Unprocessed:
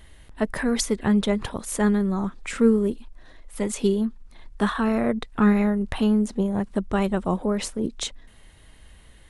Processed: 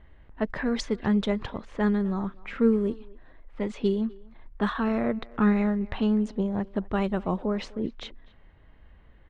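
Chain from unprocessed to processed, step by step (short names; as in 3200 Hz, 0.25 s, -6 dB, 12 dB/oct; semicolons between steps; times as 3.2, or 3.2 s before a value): LPF 4800 Hz 12 dB/oct; low-pass opened by the level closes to 1600 Hz, open at -16 dBFS; speakerphone echo 0.25 s, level -21 dB; gain -3.5 dB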